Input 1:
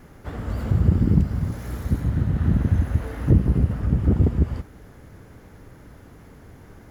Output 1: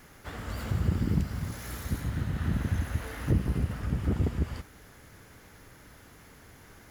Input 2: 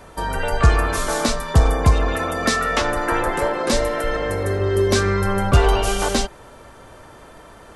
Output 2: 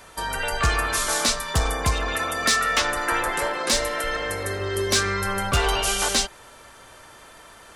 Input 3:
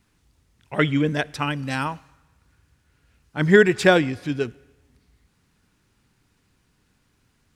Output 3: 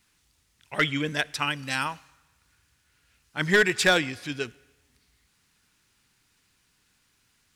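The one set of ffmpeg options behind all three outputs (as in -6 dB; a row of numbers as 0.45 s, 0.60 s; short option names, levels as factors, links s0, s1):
-af "tiltshelf=f=1100:g=-7,volume=3.16,asoftclip=hard,volume=0.316,volume=0.75"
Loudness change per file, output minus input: -9.0 LU, -3.0 LU, -4.5 LU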